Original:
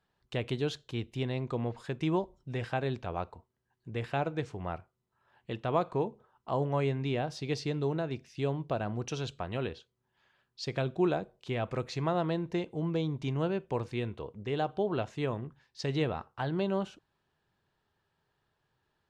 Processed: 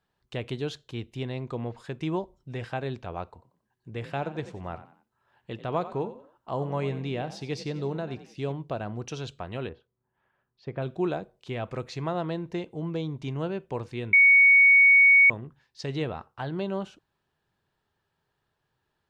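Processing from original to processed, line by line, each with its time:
3.33–8.52 s: frequency-shifting echo 90 ms, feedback 35%, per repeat +43 Hz, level -13.5 dB
9.69–10.82 s: low-pass 1.5 kHz
14.13–15.30 s: bleep 2.23 kHz -13 dBFS

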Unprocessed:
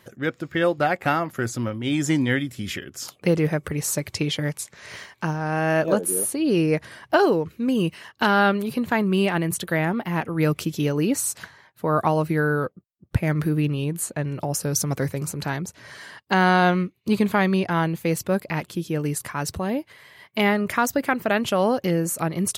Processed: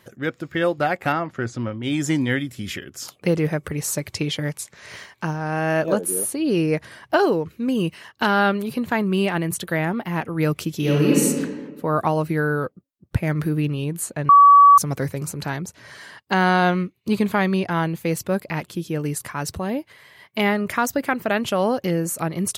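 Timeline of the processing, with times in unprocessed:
1.12–1.83 s: distance through air 110 m
10.77–11.22 s: reverb throw, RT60 1.5 s, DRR -4.5 dB
14.29–14.78 s: bleep 1.14 kHz -6.5 dBFS

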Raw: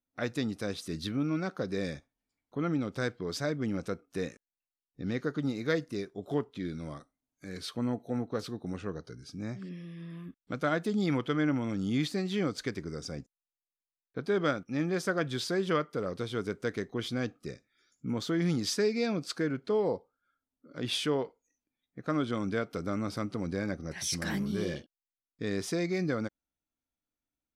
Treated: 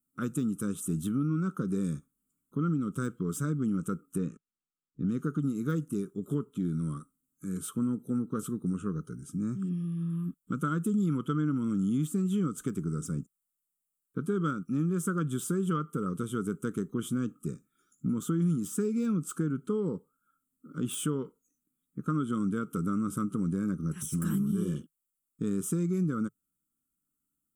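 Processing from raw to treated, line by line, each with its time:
4.18–5.09 s: distance through air 120 m
whole clip: de-esser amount 85%; FFT filter 110 Hz 0 dB, 160 Hz +12 dB, 430 Hz 0 dB, 700 Hz -23 dB, 1.3 kHz +8 dB, 1.9 kHz -19 dB, 3.1 kHz -3 dB, 4.5 kHz -21 dB, 7.8 kHz +13 dB; compression 3:1, threshold -27 dBFS

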